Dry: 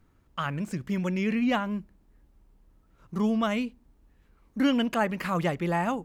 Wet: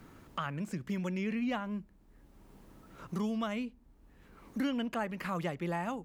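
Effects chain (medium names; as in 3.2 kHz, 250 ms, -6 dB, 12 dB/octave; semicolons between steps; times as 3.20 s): three bands compressed up and down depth 70%; trim -8 dB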